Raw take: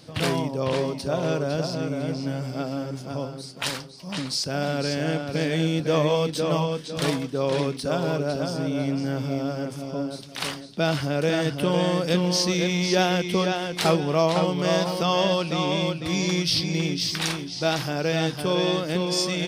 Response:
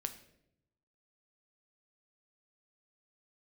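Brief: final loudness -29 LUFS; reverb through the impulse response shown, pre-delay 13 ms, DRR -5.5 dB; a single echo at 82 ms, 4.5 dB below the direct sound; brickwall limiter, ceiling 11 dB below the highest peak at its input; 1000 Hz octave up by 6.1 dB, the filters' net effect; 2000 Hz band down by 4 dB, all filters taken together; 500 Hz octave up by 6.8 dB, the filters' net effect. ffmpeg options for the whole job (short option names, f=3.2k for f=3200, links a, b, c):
-filter_complex "[0:a]equalizer=f=500:t=o:g=6.5,equalizer=f=1k:t=o:g=7.5,equalizer=f=2k:t=o:g=-9,alimiter=limit=-13dB:level=0:latency=1,aecho=1:1:82:0.596,asplit=2[a][b];[1:a]atrim=start_sample=2205,adelay=13[c];[b][c]afir=irnorm=-1:irlink=0,volume=6.5dB[d];[a][d]amix=inputs=2:normalize=0,volume=-13dB"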